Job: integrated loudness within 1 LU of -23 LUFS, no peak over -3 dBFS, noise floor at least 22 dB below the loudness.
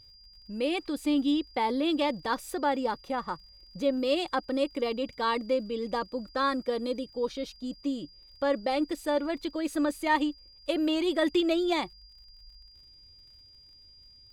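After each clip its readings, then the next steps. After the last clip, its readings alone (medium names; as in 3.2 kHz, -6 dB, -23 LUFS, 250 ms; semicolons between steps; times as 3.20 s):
tick rate 39 per s; steady tone 4.8 kHz; tone level -53 dBFS; loudness -29.5 LUFS; peak level -13.5 dBFS; loudness target -23.0 LUFS
-> de-click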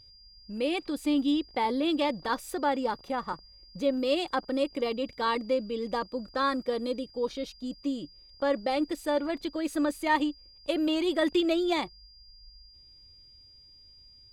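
tick rate 0.63 per s; steady tone 4.8 kHz; tone level -53 dBFS
-> band-stop 4.8 kHz, Q 30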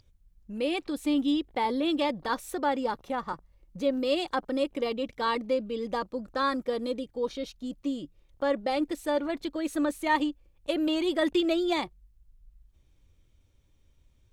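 steady tone not found; loudness -29.5 LUFS; peak level -13.5 dBFS; loudness target -23.0 LUFS
-> trim +6.5 dB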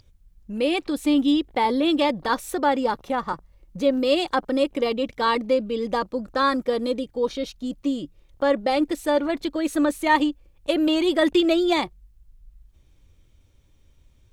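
loudness -23.0 LUFS; peak level -7.0 dBFS; noise floor -58 dBFS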